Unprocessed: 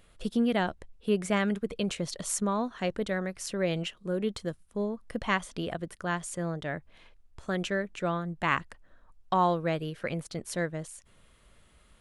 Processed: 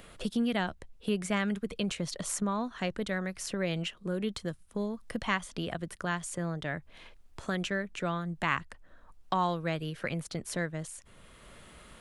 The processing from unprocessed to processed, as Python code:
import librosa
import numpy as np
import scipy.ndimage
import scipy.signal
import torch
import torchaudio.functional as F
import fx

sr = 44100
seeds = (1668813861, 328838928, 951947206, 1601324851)

y = fx.dynamic_eq(x, sr, hz=470.0, q=0.76, threshold_db=-40.0, ratio=4.0, max_db=-5)
y = fx.band_squash(y, sr, depth_pct=40)